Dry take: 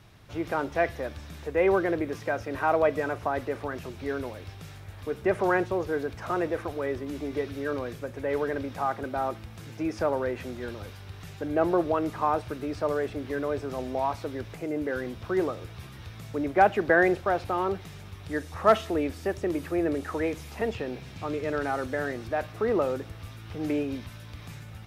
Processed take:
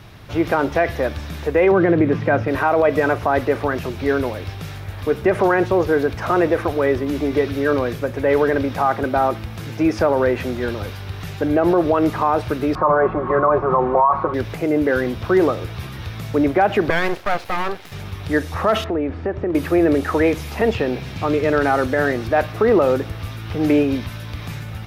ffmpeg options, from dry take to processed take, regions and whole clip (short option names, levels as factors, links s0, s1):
-filter_complex "[0:a]asettb=1/sr,asplit=3[s0][s1][s2];[s0]atrim=end=1.714[s3];[s1]atrim=start=1.71:end=2.48,asetpts=PTS-STARTPTS,afade=t=in:d=0.004:c=qsin,afade=t=out:st=0.766:d=0.004:c=qsin,highpass=f=120:w=0.5412,highpass=f=120:w=1.3066,acrossover=split=4500[s4][s5];[s5]acompressor=threshold=0.00158:ratio=4:attack=1:release=60[s6];[s4][s6]amix=inputs=2:normalize=0,bass=f=250:g=11,treble=f=4000:g=-10[s7];[s2]atrim=start=2.476[s8];[s3][s7]acrossfade=d=0.004:c1=hsin:c2=qsin[s9];[s9][s8]acrossfade=d=0.004:c1=qsin:c2=hsin,asettb=1/sr,asplit=3[s10][s11][s12];[s10]atrim=end=12.754[s13];[s11]atrim=start=12.75:end=14.34,asetpts=PTS-STARTPTS,afade=t=in:d=0.004:c=qsin,afade=t=out:st=1.586:d=0.004:c=qsin,lowpass=f=1100:t=q:w=8,aecho=1:1:5.5:0.86,atrim=end_sample=70119[s14];[s12]atrim=start=14.336[s15];[s13][s14]acrossfade=d=0.004:c1=hsin:c2=qsin[s16];[s16][s15]acrossfade=d=0.004:c1=qsin:c2=hsin,asettb=1/sr,asplit=3[s17][s18][s19];[s17]atrim=end=16.904[s20];[s18]atrim=start=16.9:end=17.92,asetpts=PTS-STARTPTS,afade=t=in:d=0.004:c=qsin,afade=t=out:st=1.016:d=0.004:c=qsin,highpass=f=560:p=1,aeval=exprs='max(val(0),0)':c=same[s21];[s19]atrim=start=17.916[s22];[s20][s21]acrossfade=d=0.004:c1=hsin:c2=qsin[s23];[s23][s22]acrossfade=d=0.004:c1=qsin:c2=hsin,asettb=1/sr,asplit=3[s24][s25][s26];[s24]atrim=end=18.844[s27];[s25]atrim=start=18.84:end=19.55,asetpts=PTS-STARTPTS,afade=t=in:d=0.004:c=qsin,afade=t=out:st=0.706:d=0.004:c=qsin,lowpass=1700,acompressor=threshold=0.0224:ratio=2.5:attack=3.2:release=140:knee=1:detection=peak[s28];[s26]atrim=start=19.546[s29];[s27][s28]acrossfade=d=0.004:c1=hsin:c2=qsin[s30];[s30][s29]acrossfade=d=0.004:c1=qsin:c2=hsin,equalizer=f=7900:w=1.4:g=-5.5,alimiter=level_in=8.41:limit=0.891:release=50:level=0:latency=1,volume=0.501"